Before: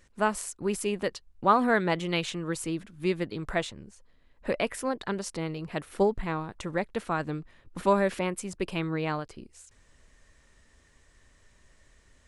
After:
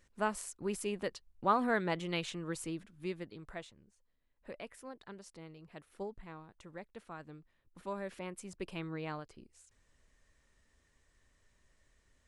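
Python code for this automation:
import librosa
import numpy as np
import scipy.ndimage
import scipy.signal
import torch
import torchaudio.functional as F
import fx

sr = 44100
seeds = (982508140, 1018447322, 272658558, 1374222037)

y = fx.gain(x, sr, db=fx.line((2.64, -7.5), (3.76, -18.0), (7.87, -18.0), (8.49, -10.5)))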